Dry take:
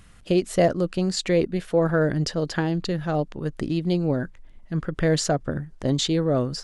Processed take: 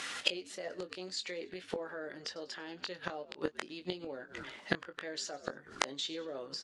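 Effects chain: bin magnitudes rounded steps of 15 dB; HPF 360 Hz 12 dB/oct; bell 1200 Hz -2.5 dB 0.45 oct; notch 690 Hz, Q 16; on a send: frequency-shifting echo 95 ms, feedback 43%, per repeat -77 Hz, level -20 dB; on the sum: limiter -19.5 dBFS, peak gain reduction 10 dB; tilt +3 dB/oct; flipped gate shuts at -27 dBFS, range -28 dB; LPF 4500 Hz 12 dB/oct; doubler 22 ms -9 dB; gain +16.5 dB

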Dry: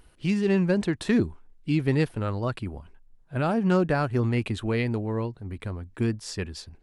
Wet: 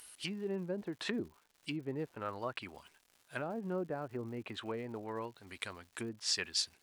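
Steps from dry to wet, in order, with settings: treble ducked by the level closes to 490 Hz, closed at -21 dBFS; differentiator; crackle 250/s -66 dBFS; gain +13.5 dB

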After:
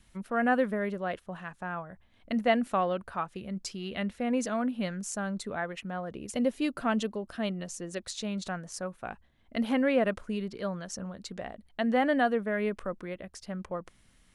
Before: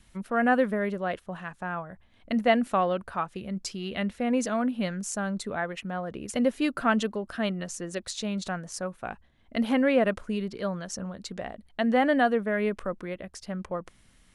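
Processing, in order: 6.1–7.93 bell 1500 Hz -4.5 dB 0.94 oct; gain -3 dB

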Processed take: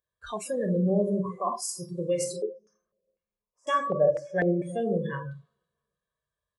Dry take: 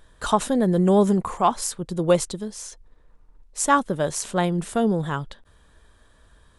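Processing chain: limiter -13.5 dBFS, peak gain reduction 7.5 dB; HPF 94 Hz 12 dB/oct; feedback echo 0.327 s, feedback 43%, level -22 dB; reverb RT60 1.0 s, pre-delay 17 ms, DRR 2 dB; spectral noise reduction 28 dB; comb 1.8 ms, depth 72%; 2.42–4.62 stepped low-pass 4 Hz 410–3300 Hz; gain -7 dB

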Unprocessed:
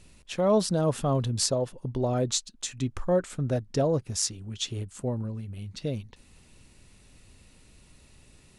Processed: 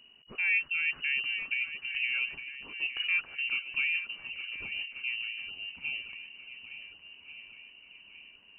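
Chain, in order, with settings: inverted band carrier 2900 Hz; swung echo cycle 1.436 s, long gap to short 1.5:1, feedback 44%, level -11 dB; gain -6 dB

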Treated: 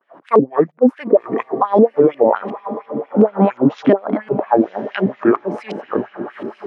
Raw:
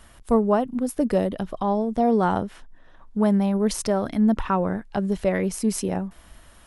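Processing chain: trilling pitch shifter -8 st, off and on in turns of 0.389 s; gate with hold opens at -43 dBFS; HPF 120 Hz 24 dB/oct; LFO low-pass saw up 2.8 Hz 340–2900 Hz; on a send: diffused feedback echo 1.008 s, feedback 41%, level -14 dB; on the sum: LFO high-pass sine 4.3 Hz 240–2700 Hz; maximiser +10 dB; gain -1 dB

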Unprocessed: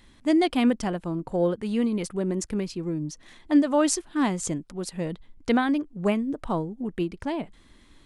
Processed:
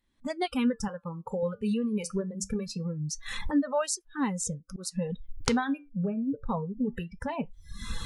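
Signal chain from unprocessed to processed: recorder AGC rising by 45 dB/s; spectral noise reduction 20 dB; 0.88–1.43 HPF 230 Hz 6 dB/oct; reverb removal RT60 0.8 s; flange 0.25 Hz, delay 3.2 ms, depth 5.9 ms, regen -78%; 4.19–4.85 auto swell 0.184 s; 5.89–6.49 running mean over 44 samples

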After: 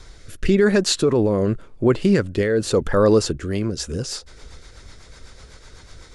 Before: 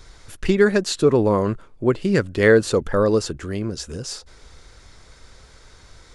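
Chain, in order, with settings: limiter -12.5 dBFS, peak gain reduction 10 dB; rotary speaker horn 0.9 Hz, later 8 Hz, at 3.24; gain +5.5 dB

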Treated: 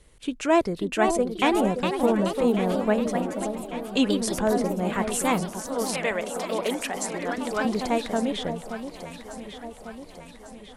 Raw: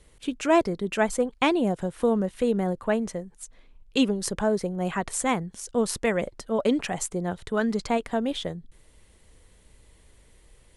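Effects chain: 5.58–7.65 weighting filter A; echoes that change speed 0.566 s, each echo +2 st, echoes 3, each echo -6 dB; on a send: echo with dull and thin repeats by turns 0.574 s, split 960 Hz, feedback 72%, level -8.5 dB

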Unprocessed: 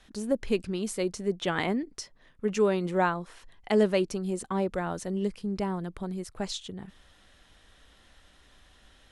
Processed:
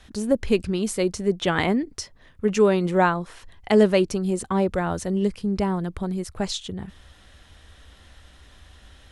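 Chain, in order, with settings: bell 76 Hz +11 dB 0.96 oct; gain +6 dB

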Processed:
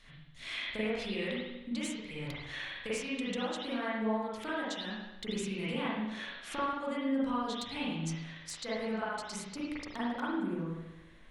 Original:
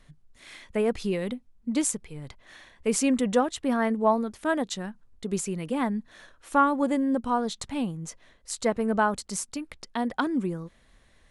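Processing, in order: bell 3400 Hz +13.5 dB 2.3 oct, from 9.36 s +3 dB; compressor 16:1, threshold -32 dBFS, peak gain reduction 21.5 dB; wavefolder -22.5 dBFS; spring tank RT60 1 s, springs 37/46 ms, chirp 70 ms, DRR -9 dB; gain -8 dB

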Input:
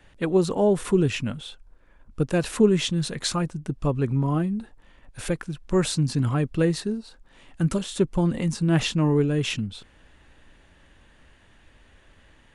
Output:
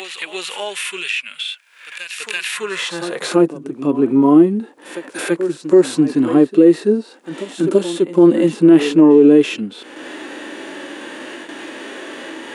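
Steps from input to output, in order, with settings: gate with hold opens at -46 dBFS; high-pass sweep 2400 Hz -> 330 Hz, 2.46–3.39; on a send: reverse echo 0.334 s -18 dB; on the sum: dynamic EQ 6200 Hz, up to -6 dB, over -46 dBFS, Q 0.85; harmonic-percussive split percussive -17 dB; upward compressor, threshold -32 dBFS; HPF 200 Hz 12 dB/oct; maximiser +16 dB; gain -1 dB

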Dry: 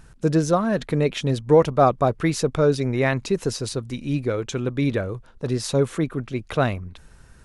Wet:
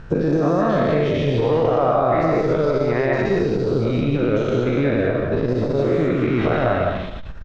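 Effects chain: spectral dilation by 0.24 s; compressor 12:1, threshold -21 dBFS, peak gain reduction 15.5 dB; high shelf 4900 Hz -4.5 dB; de-esser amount 100%; air absorption 190 m; echo 0.266 s -17.5 dB; reverb RT60 0.50 s, pre-delay 0.122 s, DRR 2 dB; core saturation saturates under 180 Hz; gain +6 dB

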